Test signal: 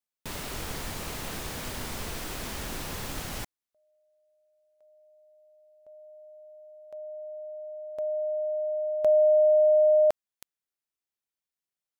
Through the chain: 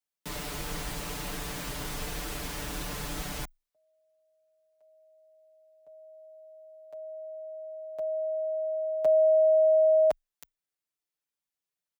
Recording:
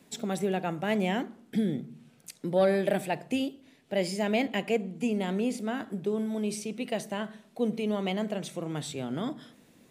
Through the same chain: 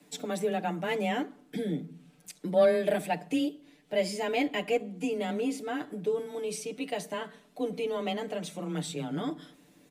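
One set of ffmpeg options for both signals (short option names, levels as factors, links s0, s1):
-af "aecho=1:1:7:0.91,afreqshift=18,volume=0.708"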